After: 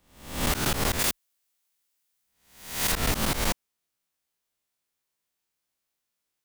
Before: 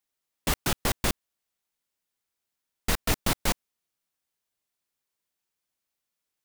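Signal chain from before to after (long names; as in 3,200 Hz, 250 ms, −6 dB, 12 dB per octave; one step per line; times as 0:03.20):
peak hold with a rise ahead of every peak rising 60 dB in 0.59 s
0:00.99–0:02.92: spectral tilt +2 dB per octave
brickwall limiter −14 dBFS, peak gain reduction 6.5 dB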